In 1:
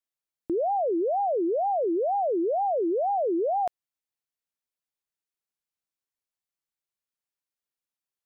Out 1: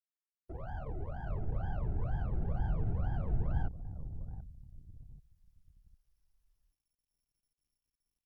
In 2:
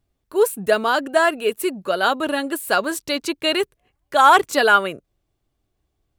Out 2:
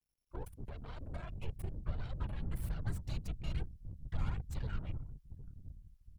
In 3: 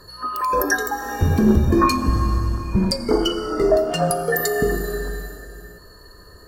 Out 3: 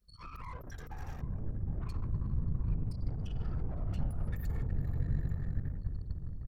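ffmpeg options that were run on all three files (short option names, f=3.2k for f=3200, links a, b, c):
-filter_complex "[0:a]acrossover=split=330|3000[a][b][c];[b]acompressor=threshold=-37dB:ratio=1.5[d];[a][d][c]amix=inputs=3:normalize=0,aeval=exprs='max(val(0),0)':c=same,acompressor=threshold=-30dB:ratio=12,alimiter=level_in=2dB:limit=-24dB:level=0:latency=1:release=51,volume=-2dB,asplit=2[e][f];[f]adelay=758,lowpass=f=1.7k:p=1,volume=-12dB,asplit=2[g][h];[h]adelay=758,lowpass=f=1.7k:p=1,volume=0.36,asplit=2[i][j];[j]adelay=758,lowpass=f=1.7k:p=1,volume=0.36,asplit=2[k][l];[l]adelay=758,lowpass=f=1.7k:p=1,volume=0.36[m];[g][i][k][m]amix=inputs=4:normalize=0[n];[e][n]amix=inputs=2:normalize=0,asoftclip=type=hard:threshold=-27dB,asubboost=boost=9.5:cutoff=110,afftfilt=real='hypot(re,im)*cos(2*PI*random(0))':imag='hypot(re,im)*sin(2*PI*random(1))':win_size=512:overlap=0.75,anlmdn=0.0398,highshelf=f=3.6k:g=-4,volume=-4dB" -ar 44100 -c:a sbc -b:a 192k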